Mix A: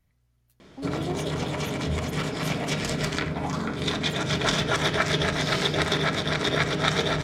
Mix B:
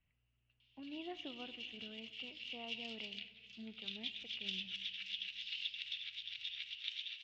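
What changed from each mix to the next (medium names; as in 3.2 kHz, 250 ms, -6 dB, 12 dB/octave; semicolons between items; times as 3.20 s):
background: add inverse Chebyshev high-pass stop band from 620 Hz, stop band 80 dB; master: add four-pole ladder low-pass 2.9 kHz, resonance 85%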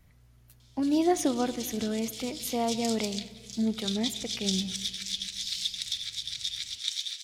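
speech +10.0 dB; master: remove four-pole ladder low-pass 2.9 kHz, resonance 85%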